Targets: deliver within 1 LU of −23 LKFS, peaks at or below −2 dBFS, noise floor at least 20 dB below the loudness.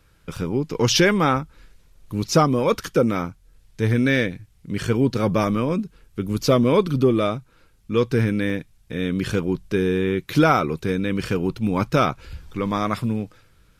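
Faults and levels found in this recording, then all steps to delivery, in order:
number of dropouts 3; longest dropout 3.0 ms; integrated loudness −22.0 LKFS; sample peak −2.5 dBFS; target loudness −23.0 LKFS
→ repair the gap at 0:00.36/0:08.50/0:11.58, 3 ms
level −1 dB

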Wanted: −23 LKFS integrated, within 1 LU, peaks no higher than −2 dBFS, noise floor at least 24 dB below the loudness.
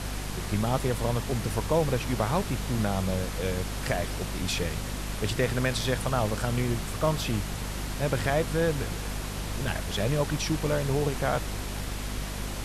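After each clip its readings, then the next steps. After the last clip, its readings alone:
mains hum 50 Hz; hum harmonics up to 250 Hz; level of the hum −32 dBFS; background noise floor −34 dBFS; target noise floor −53 dBFS; integrated loudness −29.0 LKFS; sample peak −12.5 dBFS; target loudness −23.0 LKFS
→ mains-hum notches 50/100/150/200/250 Hz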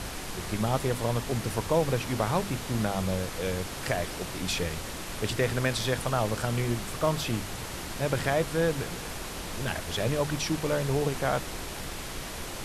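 mains hum none found; background noise floor −38 dBFS; target noise floor −54 dBFS
→ noise reduction from a noise print 16 dB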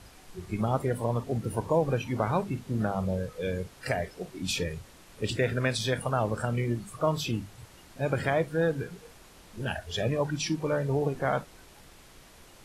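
background noise floor −53 dBFS; target noise floor −54 dBFS
→ noise reduction from a noise print 6 dB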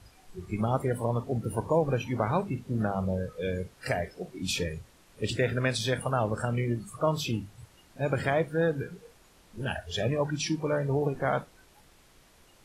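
background noise floor −59 dBFS; integrated loudness −30.0 LKFS; sample peak −13.0 dBFS; target loudness −23.0 LKFS
→ level +7 dB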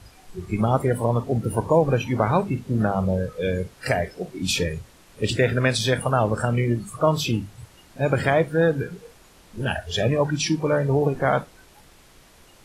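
integrated loudness −23.0 LKFS; sample peak −6.0 dBFS; background noise floor −52 dBFS

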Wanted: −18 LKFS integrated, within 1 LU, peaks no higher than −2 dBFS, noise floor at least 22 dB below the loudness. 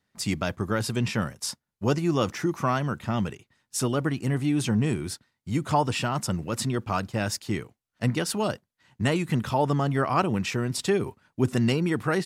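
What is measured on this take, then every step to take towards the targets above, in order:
integrated loudness −27.0 LKFS; sample peak −9.5 dBFS; target loudness −18.0 LKFS
→ level +9 dB
brickwall limiter −2 dBFS

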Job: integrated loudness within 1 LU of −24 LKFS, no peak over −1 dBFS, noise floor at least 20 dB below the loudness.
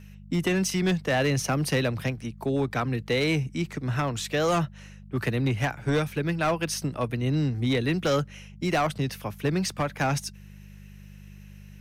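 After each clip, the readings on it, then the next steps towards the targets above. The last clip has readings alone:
share of clipped samples 1.2%; peaks flattened at −18.5 dBFS; mains hum 50 Hz; hum harmonics up to 200 Hz; level of the hum −45 dBFS; integrated loudness −27.0 LKFS; sample peak −18.5 dBFS; target loudness −24.0 LKFS
→ clipped peaks rebuilt −18.5 dBFS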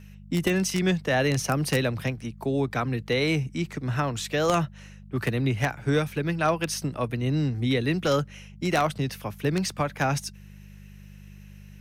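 share of clipped samples 0.0%; mains hum 50 Hz; hum harmonics up to 200 Hz; level of the hum −44 dBFS
→ hum removal 50 Hz, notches 4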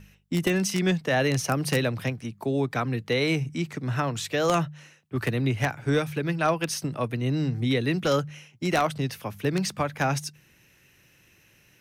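mains hum none found; integrated loudness −26.5 LKFS; sample peak −9.5 dBFS; target loudness −24.0 LKFS
→ level +2.5 dB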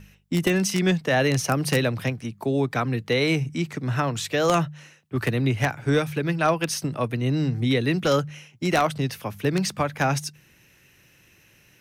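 integrated loudness −24.0 LKFS; sample peak −7.0 dBFS; background noise floor −58 dBFS

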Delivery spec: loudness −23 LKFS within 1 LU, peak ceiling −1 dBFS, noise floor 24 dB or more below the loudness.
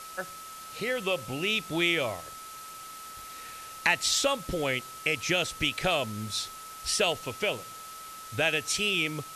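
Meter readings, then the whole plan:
interfering tone 1,300 Hz; level of the tone −43 dBFS; background noise floor −44 dBFS; target noise floor −53 dBFS; integrated loudness −28.5 LKFS; sample peak −8.5 dBFS; target loudness −23.0 LKFS
→ notch filter 1,300 Hz, Q 30
broadband denoise 9 dB, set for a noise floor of −44 dBFS
level +5.5 dB

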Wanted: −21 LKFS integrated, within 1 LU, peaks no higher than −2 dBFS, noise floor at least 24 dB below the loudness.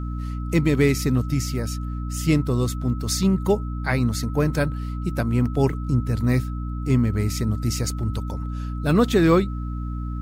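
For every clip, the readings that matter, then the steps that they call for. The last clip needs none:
mains hum 60 Hz; hum harmonics up to 300 Hz; level of the hum −26 dBFS; interfering tone 1,300 Hz; level of the tone −41 dBFS; integrated loudness −23.0 LKFS; sample peak −4.5 dBFS; target loudness −21.0 LKFS
→ mains-hum notches 60/120/180/240/300 Hz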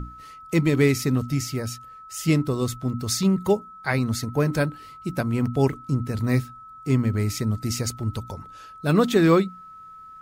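mains hum none found; interfering tone 1,300 Hz; level of the tone −41 dBFS
→ notch filter 1,300 Hz, Q 30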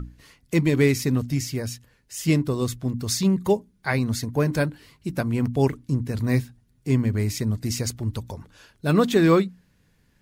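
interfering tone none found; integrated loudness −24.0 LKFS; sample peak −5.5 dBFS; target loudness −21.0 LKFS
→ level +3 dB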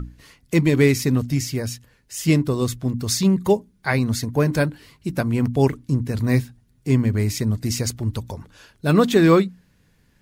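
integrated loudness −21.0 LKFS; sample peak −2.5 dBFS; background noise floor −61 dBFS

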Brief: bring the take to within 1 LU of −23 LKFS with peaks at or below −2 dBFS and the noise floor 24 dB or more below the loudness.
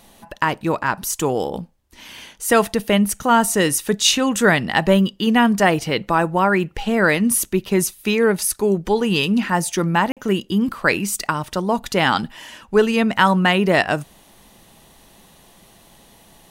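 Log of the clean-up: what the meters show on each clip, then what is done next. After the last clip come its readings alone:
number of dropouts 1; longest dropout 47 ms; integrated loudness −18.5 LKFS; sample peak −1.0 dBFS; target loudness −23.0 LKFS
→ repair the gap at 0:10.12, 47 ms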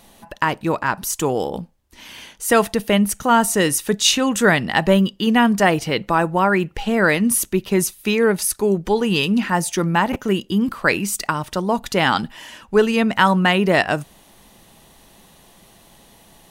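number of dropouts 0; integrated loudness −18.5 LKFS; sample peak −1.0 dBFS; target loudness −23.0 LKFS
→ level −4.5 dB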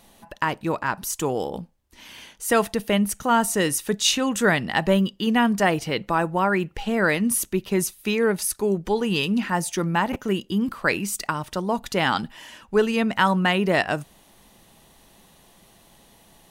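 integrated loudness −23.0 LKFS; sample peak −5.5 dBFS; background noise floor −55 dBFS

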